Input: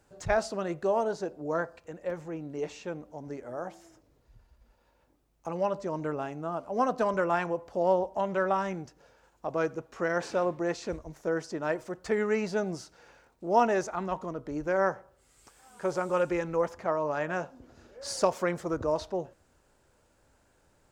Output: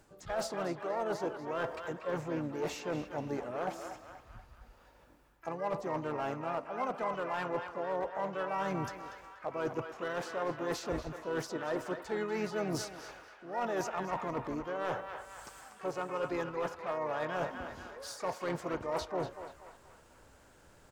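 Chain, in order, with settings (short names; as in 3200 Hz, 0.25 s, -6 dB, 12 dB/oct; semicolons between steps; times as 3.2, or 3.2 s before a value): dynamic EQ 920 Hz, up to +5 dB, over -42 dBFS, Q 1; reverse; compressor 16:1, threshold -37 dBFS, peak gain reduction 24 dB; reverse; hard clip -32.5 dBFS, distortion -22 dB; narrowing echo 0.24 s, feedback 59%, band-pass 1500 Hz, level -5.5 dB; harmoniser -4 st -11 dB, +12 st -13 dB; gain +5 dB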